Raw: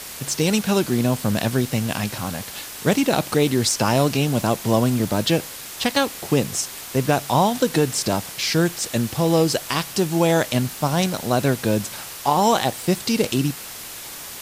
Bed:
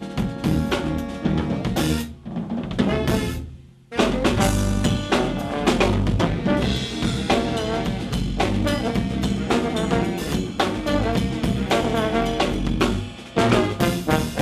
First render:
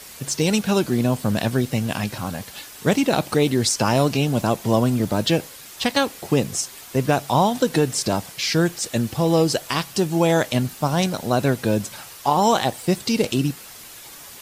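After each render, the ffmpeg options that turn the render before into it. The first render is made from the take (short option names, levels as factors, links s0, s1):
-af "afftdn=nr=7:nf=-36"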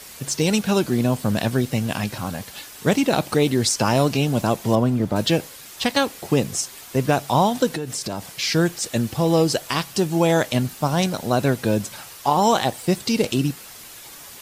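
-filter_complex "[0:a]asettb=1/sr,asplit=3[s0][s1][s2];[s0]atrim=end=4.754[s3];[s1]atrim=start=4.75:end=5.16,asetpts=PTS-STARTPTS,afade=t=in:d=0.004:c=qsin,afade=t=out:st=0.406:d=0.004:c=qsin,highshelf=f=3100:g=-11[s4];[s2]atrim=start=5.156[s5];[s3][s4]acrossfade=d=0.004:c1=hsin:c2=qsin[s6];[s6][s5]acrossfade=d=0.004:c1=qsin:c2=hsin,asettb=1/sr,asplit=3[s7][s8][s9];[s7]atrim=end=7.724[s10];[s8]atrim=start=7.72:end=8.34,asetpts=PTS-STARTPTS,afade=t=in:d=0.004:c=qsin,afade=t=out:st=0.616:d=0.004:c=qsin,acompressor=threshold=0.0631:ratio=5:attack=3.2:release=140:knee=1:detection=peak[s11];[s9]atrim=start=8.336[s12];[s10][s11]acrossfade=d=0.004:c1=hsin:c2=qsin[s13];[s13][s12]acrossfade=d=0.004:c1=qsin:c2=hsin"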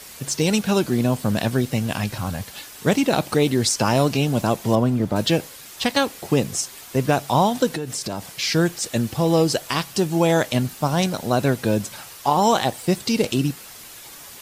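-filter_complex "[0:a]asettb=1/sr,asplit=3[s0][s1][s2];[s0]atrim=end=1.804[s3];[s1]atrim=start=1.8:end=2.45,asetpts=PTS-STARTPTS,afade=t=in:d=0.004:c=qsin,afade=t=out:st=0.646:d=0.004:c=qsin,asubboost=boost=11.5:cutoff=140[s4];[s2]atrim=start=2.446[s5];[s3][s4]acrossfade=d=0.004:c1=hsin:c2=qsin[s6];[s6][s5]acrossfade=d=0.004:c1=qsin:c2=hsin"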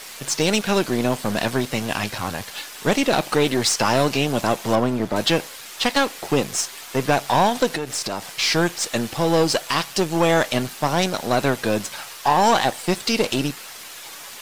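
-filter_complex "[0:a]aeval=exprs='if(lt(val(0),0),0.447*val(0),val(0))':c=same,asplit=2[s0][s1];[s1]highpass=f=720:p=1,volume=5.01,asoftclip=type=tanh:threshold=0.501[s2];[s0][s2]amix=inputs=2:normalize=0,lowpass=f=5200:p=1,volume=0.501"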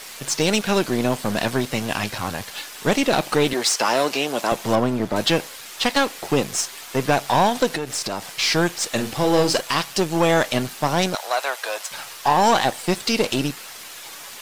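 -filter_complex "[0:a]asettb=1/sr,asplit=3[s0][s1][s2];[s0]atrim=end=3.534[s3];[s1]atrim=start=3.53:end=4.52,asetpts=PTS-STARTPTS,afade=t=in:d=0.004:c=qsin,afade=t=out:st=0.986:d=0.004:c=qsin,highpass=330[s4];[s2]atrim=start=4.516[s5];[s3][s4]acrossfade=d=0.004:c1=hsin:c2=qsin[s6];[s6][s5]acrossfade=d=0.004:c1=qsin:c2=hsin,asettb=1/sr,asplit=3[s7][s8][s9];[s7]atrim=end=8.914[s10];[s8]atrim=start=8.91:end=9.61,asetpts=PTS-STARTPTS,afade=t=in:d=0.004:c=qsin,afade=t=out:st=0.696:d=0.004:c=qsin,asplit=2[s11][s12];[s12]adelay=45,volume=0.398[s13];[s11][s13]amix=inputs=2:normalize=0,atrim=end_sample=30870[s14];[s9]atrim=start=9.606[s15];[s10][s14]acrossfade=d=0.004:c1=hsin:c2=qsin[s16];[s16][s15]acrossfade=d=0.004:c1=qsin:c2=hsin,asettb=1/sr,asplit=3[s17][s18][s19];[s17]atrim=end=11.154[s20];[s18]atrim=start=11.15:end=11.91,asetpts=PTS-STARTPTS,afade=t=in:d=0.004:c=qsin,afade=t=out:st=0.756:d=0.004:c=qsin,highpass=f=620:w=0.5412,highpass=f=620:w=1.3066[s21];[s19]atrim=start=11.906[s22];[s20][s21]acrossfade=d=0.004:c1=hsin:c2=qsin[s23];[s23][s22]acrossfade=d=0.004:c1=qsin:c2=hsin"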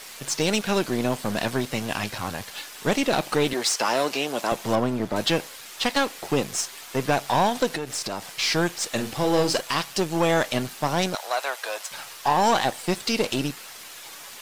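-af "volume=0.668"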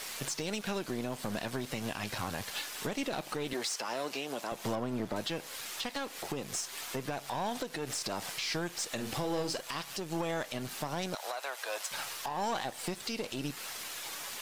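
-af "acompressor=threshold=0.0398:ratio=16,alimiter=level_in=1.12:limit=0.0631:level=0:latency=1:release=214,volume=0.891"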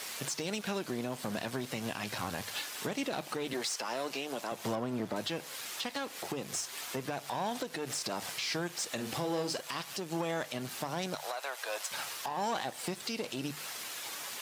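-af "highpass=84,bandreject=f=50:t=h:w=6,bandreject=f=100:t=h:w=6,bandreject=f=150:t=h:w=6"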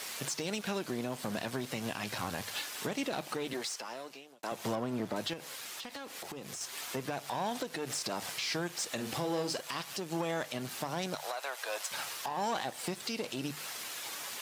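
-filter_complex "[0:a]asettb=1/sr,asplit=3[s0][s1][s2];[s0]atrim=end=5.334[s3];[s1]atrim=start=5.33:end=6.61,asetpts=PTS-STARTPTS,afade=t=in:d=0.004:c=qsin,afade=t=out:st=1.276:d=0.004:c=qsin,acompressor=threshold=0.0112:ratio=6:attack=3.2:release=140:knee=1:detection=peak[s4];[s2]atrim=start=6.606[s5];[s3][s4]acrossfade=d=0.004:c1=hsin:c2=qsin[s6];[s6][s5]acrossfade=d=0.004:c1=qsin:c2=hsin,asplit=2[s7][s8];[s7]atrim=end=4.43,asetpts=PTS-STARTPTS,afade=t=out:st=3.37:d=1.06[s9];[s8]atrim=start=4.43,asetpts=PTS-STARTPTS,afade=t=in:d=0.004:c=hsin[s10];[s9][s10]concat=n=2:v=0:a=1"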